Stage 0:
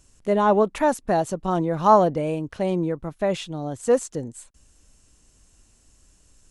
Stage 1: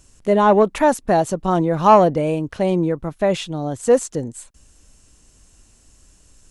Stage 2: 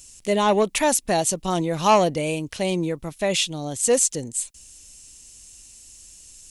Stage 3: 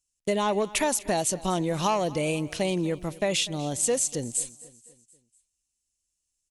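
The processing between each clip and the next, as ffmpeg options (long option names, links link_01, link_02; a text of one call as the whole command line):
ffmpeg -i in.wav -af "acontrast=30" out.wav
ffmpeg -i in.wav -af "aexciter=amount=5.4:drive=2.5:freq=2100,volume=-5.5dB" out.wav
ffmpeg -i in.wav -af "agate=range=-34dB:threshold=-37dB:ratio=16:detection=peak,acompressor=threshold=-22dB:ratio=6,aecho=1:1:245|490|735|980:0.1|0.052|0.027|0.0141" out.wav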